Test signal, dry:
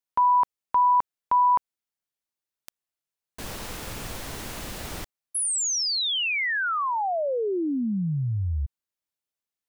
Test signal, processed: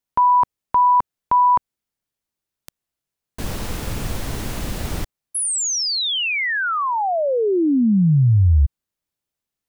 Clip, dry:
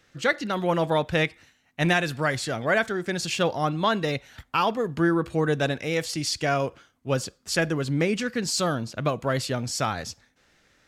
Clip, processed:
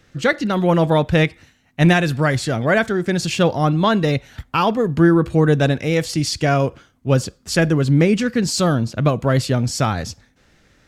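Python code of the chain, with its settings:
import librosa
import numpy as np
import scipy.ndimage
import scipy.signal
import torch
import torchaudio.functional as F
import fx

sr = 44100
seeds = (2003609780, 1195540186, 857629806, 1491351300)

y = fx.low_shelf(x, sr, hz=330.0, db=9.5)
y = y * 10.0 ** (4.0 / 20.0)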